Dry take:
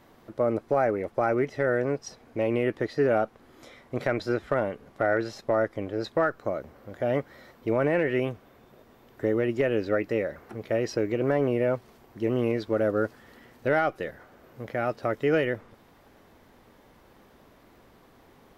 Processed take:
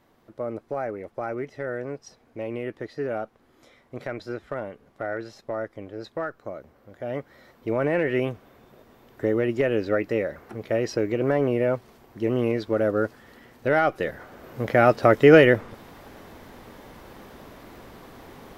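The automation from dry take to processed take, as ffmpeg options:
ffmpeg -i in.wav -af "volume=11dB,afade=type=in:start_time=7:duration=1.19:silence=0.398107,afade=type=in:start_time=13.7:duration=1.07:silence=0.354813" out.wav

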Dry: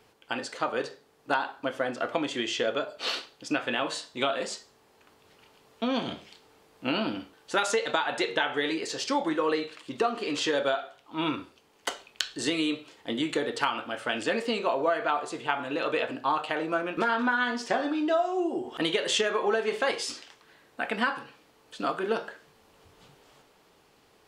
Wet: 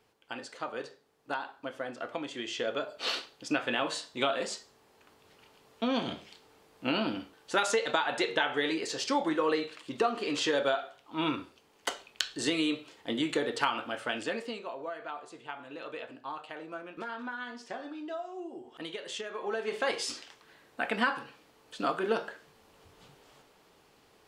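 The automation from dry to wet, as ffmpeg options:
ffmpeg -i in.wav -af "volume=10.5dB,afade=type=in:start_time=2.37:duration=0.73:silence=0.473151,afade=type=out:start_time=13.89:duration=0.75:silence=0.266073,afade=type=in:start_time=19.3:duration=0.81:silence=0.251189" out.wav

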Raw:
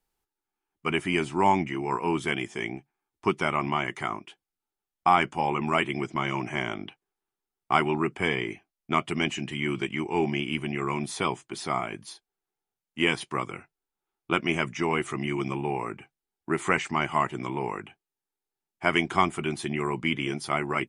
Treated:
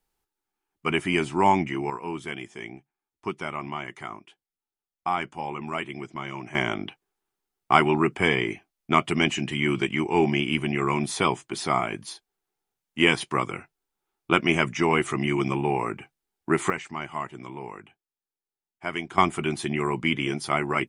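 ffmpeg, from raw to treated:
ffmpeg -i in.wav -af "asetnsamples=nb_out_samples=441:pad=0,asendcmd='1.9 volume volume -6dB;6.55 volume volume 4.5dB;16.7 volume volume -7dB;19.18 volume volume 2.5dB',volume=2dB" out.wav

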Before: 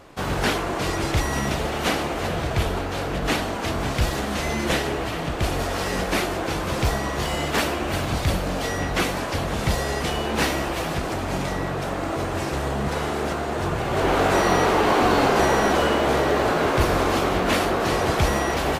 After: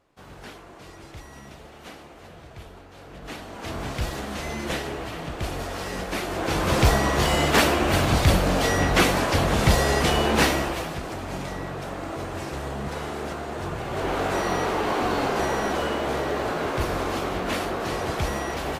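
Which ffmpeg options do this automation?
ffmpeg -i in.wav -af "volume=4dB,afade=type=in:start_time=2.92:duration=0.57:silence=0.446684,afade=type=in:start_time=3.49:duration=0.26:silence=0.473151,afade=type=in:start_time=6.22:duration=0.51:silence=0.316228,afade=type=out:start_time=10.27:duration=0.65:silence=0.316228" out.wav

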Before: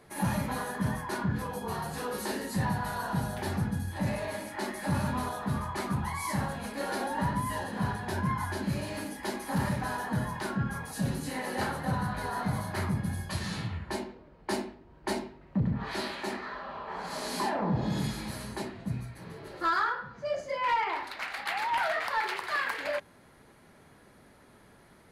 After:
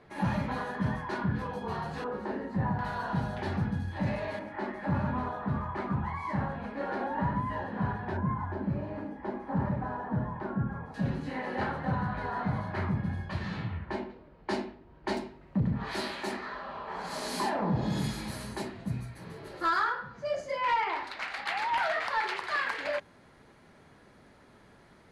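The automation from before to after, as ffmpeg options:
ffmpeg -i in.wav -af "asetnsamples=nb_out_samples=441:pad=0,asendcmd='2.04 lowpass f 1400;2.79 lowpass f 3700;4.39 lowpass f 1900;8.17 lowpass f 1100;10.94 lowpass f 2600;14.1 lowpass f 4600;15.17 lowpass f 12000;20.6 lowpass f 7000',lowpass=3700" out.wav

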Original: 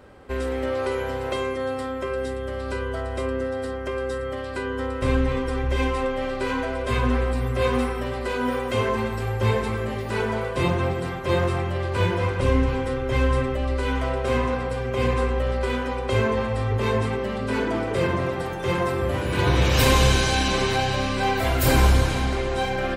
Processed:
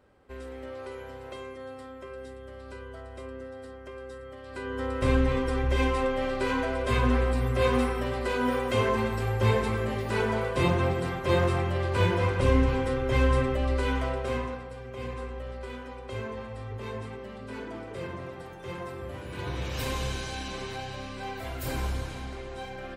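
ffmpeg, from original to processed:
ffmpeg -i in.wav -af "volume=-2dB,afade=type=in:start_time=4.41:duration=0.57:silence=0.251189,afade=type=out:start_time=13.78:duration=0.87:silence=0.251189" out.wav

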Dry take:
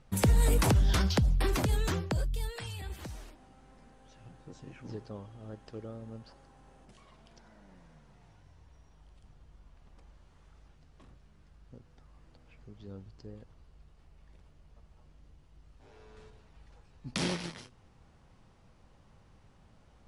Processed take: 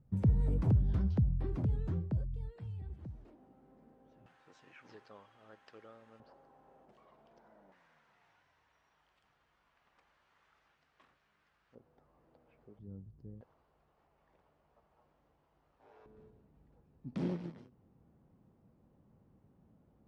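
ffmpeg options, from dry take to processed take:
ffmpeg -i in.wav -af "asetnsamples=nb_out_samples=441:pad=0,asendcmd='3.25 bandpass f 330;4.26 bandpass f 1800;6.2 bandpass f 600;7.72 bandpass f 1700;11.75 bandpass f 540;12.79 bandpass f 140;13.41 bandpass f 790;16.06 bandpass f 240',bandpass=frequency=120:width_type=q:width=0.96:csg=0" out.wav

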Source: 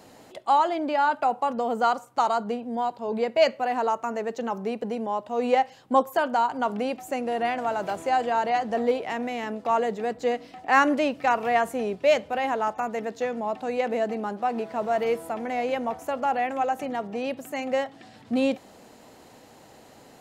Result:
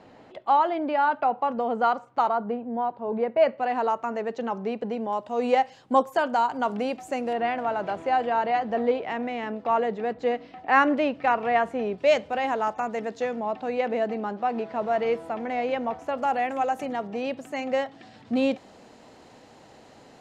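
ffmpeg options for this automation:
ffmpeg -i in.wav -af "asetnsamples=nb_out_samples=441:pad=0,asendcmd='2.29 lowpass f 1700;3.58 lowpass f 4200;5.13 lowpass f 8100;7.33 lowpass f 3300;11.98 lowpass f 7200;13.36 lowpass f 4300;16.18 lowpass f 11000;16.93 lowpass f 6300',lowpass=2900" out.wav

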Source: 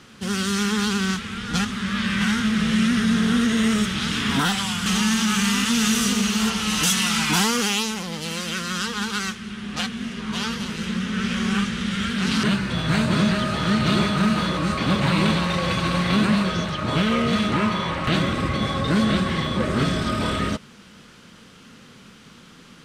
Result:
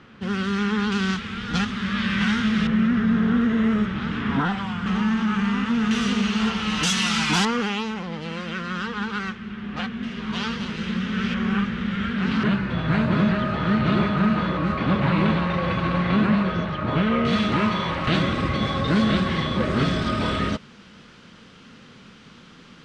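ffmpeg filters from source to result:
ffmpeg -i in.wav -af "asetnsamples=nb_out_samples=441:pad=0,asendcmd='0.92 lowpass f 4200;2.67 lowpass f 1600;5.91 lowpass f 3100;6.83 lowpass f 5600;7.45 lowpass f 2200;10.03 lowpass f 3800;11.34 lowpass f 2200;17.25 lowpass f 5100',lowpass=2500" out.wav

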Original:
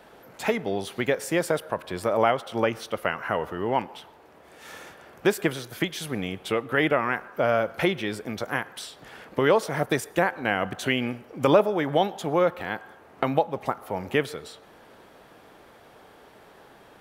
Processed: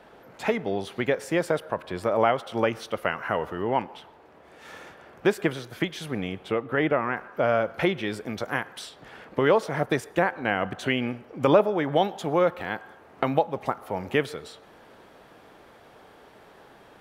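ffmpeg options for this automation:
ffmpeg -i in.wav -af "asetnsamples=nb_out_samples=441:pad=0,asendcmd='2.35 lowpass f 7600;3.62 lowpass f 3600;6.45 lowpass f 1600;7.17 lowpass f 3900;8.03 lowpass f 7400;8.89 lowpass f 3700;11.96 lowpass f 8000',lowpass=frequency=3800:poles=1" out.wav

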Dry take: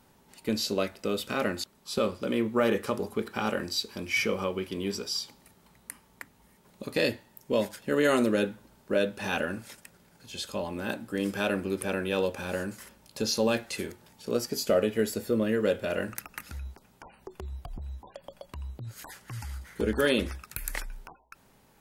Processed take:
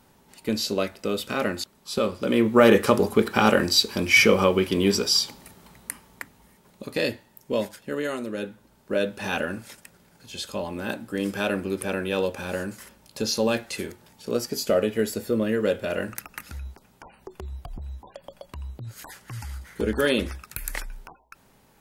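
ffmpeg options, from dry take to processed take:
ffmpeg -i in.wav -af "volume=22dB,afade=type=in:start_time=2.1:duration=0.71:silence=0.398107,afade=type=out:start_time=5.22:duration=1.63:silence=0.316228,afade=type=out:start_time=7.59:duration=0.62:silence=0.334965,afade=type=in:start_time=8.21:duration=0.92:silence=0.281838" out.wav

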